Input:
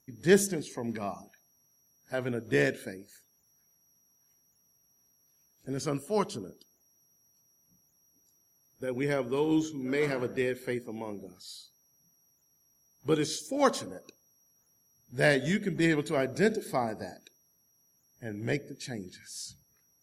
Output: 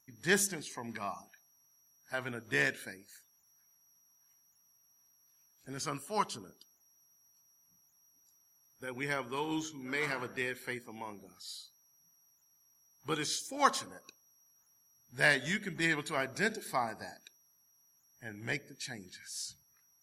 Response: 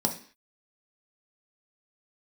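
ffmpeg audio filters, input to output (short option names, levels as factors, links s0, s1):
-af "lowshelf=f=710:t=q:w=1.5:g=-8.5"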